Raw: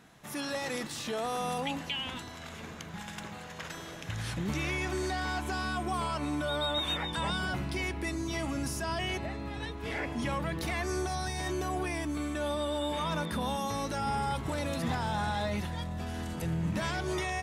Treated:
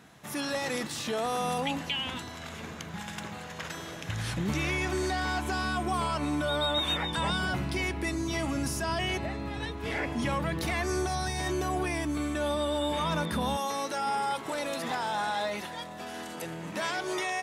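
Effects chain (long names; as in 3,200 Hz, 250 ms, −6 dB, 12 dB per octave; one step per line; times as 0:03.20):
high-pass filter 52 Hz 12 dB per octave, from 0:13.57 350 Hz
level +3 dB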